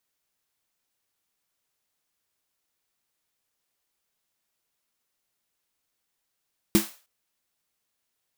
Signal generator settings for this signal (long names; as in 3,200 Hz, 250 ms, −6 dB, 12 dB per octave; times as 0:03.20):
synth snare length 0.31 s, tones 210 Hz, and 330 Hz, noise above 500 Hz, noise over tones −8 dB, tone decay 0.16 s, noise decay 0.37 s